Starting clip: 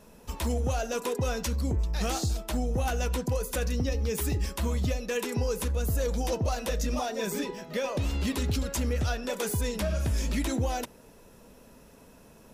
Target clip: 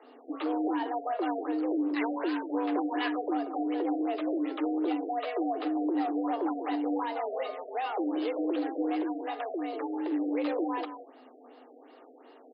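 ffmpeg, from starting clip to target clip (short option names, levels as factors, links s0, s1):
-filter_complex "[0:a]acrossover=split=3600[s0][s1];[s1]acompressor=threshold=0.00282:ratio=4:attack=1:release=60[s2];[s0][s2]amix=inputs=2:normalize=0,asettb=1/sr,asplit=3[s3][s4][s5];[s3]atrim=end=1.964[s6];[s4]atrim=start=1.96:end=3.1,asetpts=PTS-STARTPTS,afade=t=in:d=0.004:c=qsin,afade=t=out:st=1.136:d=0.004:c=qsin,equalizer=f=1800:t=o:w=1.8:g=12.5[s7];[s5]atrim=start=3.096[s8];[s6][s7]acrossfade=d=0.004:c1=hsin:c2=qsin[s9];[s9][s8]acrossfade=d=0.004:c1=qsin:c2=hsin,asettb=1/sr,asplit=3[s10][s11][s12];[s10]atrim=end=9.004[s13];[s11]atrim=start=9:end=10.11,asetpts=PTS-STARTPTS,afade=t=in:d=0.004:c=qsin,afade=t=out:st=1.106:d=0.004:c=qsin,acompressor=threshold=0.0316:ratio=6[s14];[s12]atrim=start=10.106[s15];[s13][s14]acrossfade=d=0.004:c1=hsin:c2=qsin[s16];[s16][s15]acrossfade=d=0.004:c1=qsin:c2=hsin,asoftclip=type=tanh:threshold=0.0562,afreqshift=240,aecho=1:1:187:0.316,afftfilt=real='re*lt(b*sr/1024,750*pow(5200/750,0.5+0.5*sin(2*PI*2.7*pts/sr)))':imag='im*lt(b*sr/1024,750*pow(5200/750,0.5+0.5*sin(2*PI*2.7*pts/sr)))':win_size=1024:overlap=0.75"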